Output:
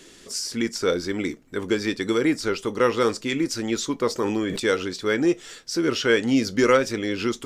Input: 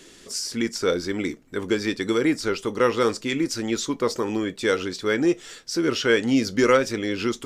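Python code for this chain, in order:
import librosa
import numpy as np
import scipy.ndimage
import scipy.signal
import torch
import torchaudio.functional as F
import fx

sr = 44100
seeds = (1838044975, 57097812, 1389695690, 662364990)

y = fx.sustainer(x, sr, db_per_s=29.0, at=(4.19, 4.6))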